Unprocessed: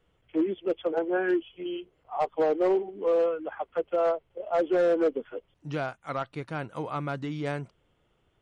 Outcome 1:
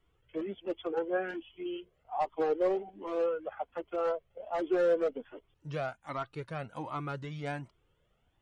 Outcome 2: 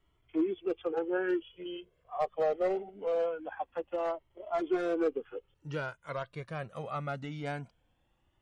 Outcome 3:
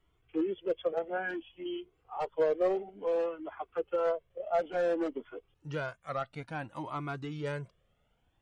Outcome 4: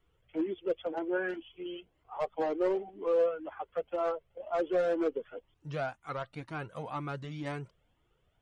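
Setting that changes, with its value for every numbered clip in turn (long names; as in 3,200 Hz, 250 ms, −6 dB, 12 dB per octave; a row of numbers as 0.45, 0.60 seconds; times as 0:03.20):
flanger whose copies keep moving one way, speed: 1.3, 0.23, 0.58, 2 Hertz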